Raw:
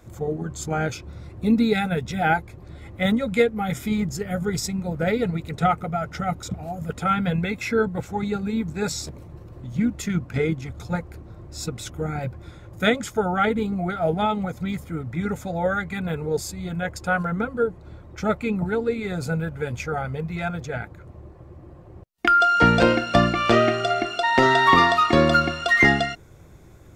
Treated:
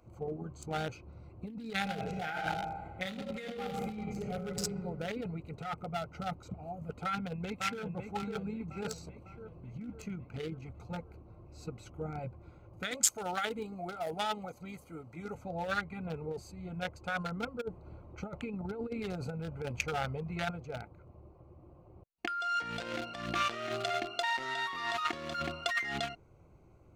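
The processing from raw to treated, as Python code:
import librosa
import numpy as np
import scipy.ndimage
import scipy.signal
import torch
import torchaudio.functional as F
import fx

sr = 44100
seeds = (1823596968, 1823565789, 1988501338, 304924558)

y = fx.reverb_throw(x, sr, start_s=1.77, length_s=2.81, rt60_s=1.6, drr_db=0.0)
y = fx.echo_throw(y, sr, start_s=7.05, length_s=0.78, ms=550, feedback_pct=55, wet_db=-7.5)
y = fx.bass_treble(y, sr, bass_db=-9, treble_db=13, at=(12.91, 15.35))
y = fx.over_compress(y, sr, threshold_db=-26.0, ratio=-0.5, at=(17.6, 20.5), fade=0.02)
y = fx.wiener(y, sr, points=25)
y = fx.over_compress(y, sr, threshold_db=-25.0, ratio=-1.0)
y = fx.tilt_shelf(y, sr, db=-7.5, hz=940.0)
y = y * 10.0 ** (-8.0 / 20.0)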